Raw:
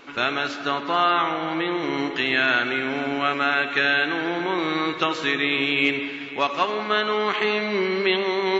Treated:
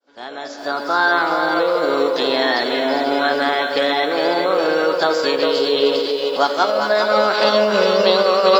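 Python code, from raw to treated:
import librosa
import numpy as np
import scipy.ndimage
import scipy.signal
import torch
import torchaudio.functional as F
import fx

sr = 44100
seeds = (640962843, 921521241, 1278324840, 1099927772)

y = fx.fade_in_head(x, sr, length_s=1.1)
y = fx.graphic_eq_10(y, sr, hz=(125, 250, 500, 1000, 2000, 4000), db=(-10, 5, 8, 4, -11, 7))
y = fx.echo_feedback(y, sr, ms=405, feedback_pct=43, wet_db=-7.0)
y = fx.formant_shift(y, sr, semitones=4)
y = fx.echo_crushed(y, sr, ms=403, feedback_pct=35, bits=7, wet_db=-11.0)
y = y * librosa.db_to_amplitude(1.5)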